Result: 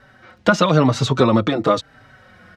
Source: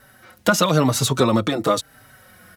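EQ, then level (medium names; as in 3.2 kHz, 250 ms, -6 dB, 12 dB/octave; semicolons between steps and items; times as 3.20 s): distance through air 150 m; +3.0 dB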